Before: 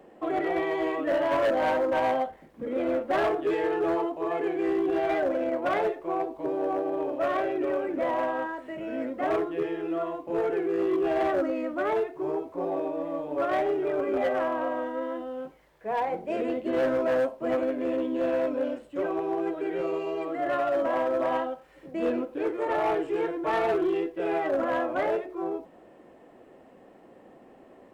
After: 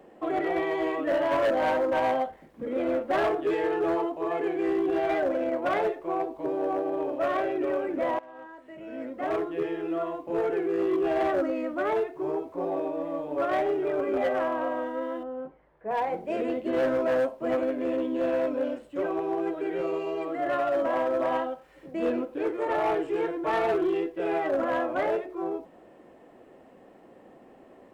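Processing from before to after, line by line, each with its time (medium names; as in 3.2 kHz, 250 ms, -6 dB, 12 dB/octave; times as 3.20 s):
8.19–9.67 s: fade in, from -23.5 dB
15.23–15.91 s: low-pass 1.5 kHz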